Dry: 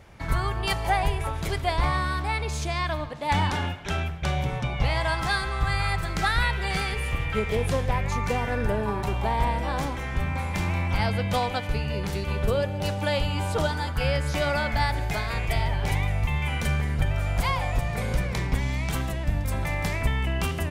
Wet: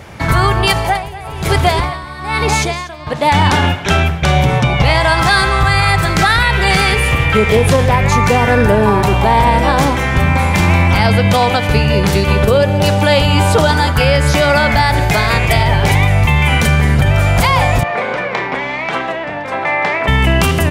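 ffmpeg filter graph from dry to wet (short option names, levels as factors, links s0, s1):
-filter_complex "[0:a]asettb=1/sr,asplit=3[s0][s1][s2];[s0]atrim=end=0.714[s3];[s1]atrim=start=0.71:end=3.07,asetpts=PTS-STARTPTS,afade=t=in:d=0.004:c=qsin,afade=t=out:st=2.356:d=0.004:c=qsin,aecho=1:1:240:0.596,atrim=end_sample=104076,aeval=exprs='val(0)*pow(10,-20*(0.5-0.5*cos(2*PI*1.1*n/s))/20)':c=same[s4];[s2]atrim=start=3.066[s5];[s3][s4]acrossfade=d=0.004:c1=hsin:c2=qsin[s6];[s6][s5]acrossfade=d=0.004:c1=qsin:c2=hsin,asettb=1/sr,asplit=3[s7][s8][s9];[s7]atrim=end=17.834[s10];[s8]atrim=start=17.83:end=20.08,asetpts=PTS-STARTPTS,afade=t=in:d=0.004:c=qsin,afade=t=out:st=2.246:d=0.004:c=qsin,highpass=450,lowpass=2300,asplit=2[s11][s12];[s12]adelay=33,volume=0.224[s13];[s11][s13]amix=inputs=2:normalize=0,atrim=end_sample=99225[s14];[s9]atrim=start=20.076[s15];[s10][s14]acrossfade=d=0.004:c1=hsin:c2=qsin[s16];[s16][s15]acrossfade=d=0.004:c1=qsin:c2=hsin,highpass=76,alimiter=level_in=8.41:limit=0.891:release=50:level=0:latency=1,volume=0.891"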